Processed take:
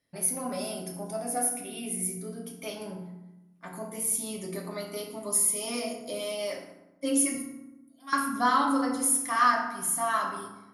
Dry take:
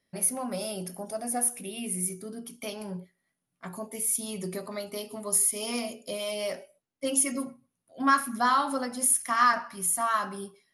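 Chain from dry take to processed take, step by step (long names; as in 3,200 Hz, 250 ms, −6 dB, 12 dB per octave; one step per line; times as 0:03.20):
0:07.35–0:08.13: first difference
feedback delay network reverb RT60 1 s, low-frequency decay 1.45×, high-frequency decay 0.55×, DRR 0 dB
level −3 dB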